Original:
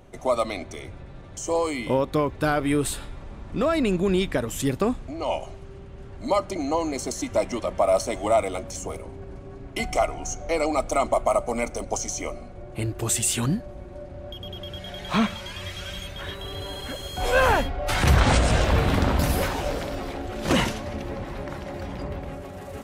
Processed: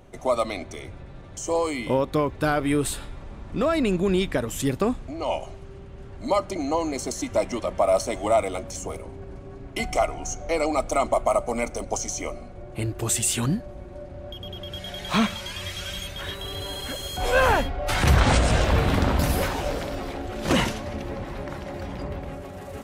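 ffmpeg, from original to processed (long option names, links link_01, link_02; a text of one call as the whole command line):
ffmpeg -i in.wav -filter_complex "[0:a]asettb=1/sr,asplit=3[link_01][link_02][link_03];[link_01]atrim=end=14.724[link_04];[link_02]atrim=start=14.72:end=17.17,asetpts=PTS-STARTPTS,afade=type=in:duration=0.004:curve=qsin,afade=type=out:start_time=2.446:duration=0.004:curve=qsin,highshelf=frequency=3500:gain=6.5[link_05];[link_03]atrim=start=17.166[link_06];[link_04][link_05]acrossfade=duration=0.004:curve1=hsin:curve2=qsin[link_07];[link_07][link_06]acrossfade=duration=0.004:curve1=qsin:curve2=hsin" out.wav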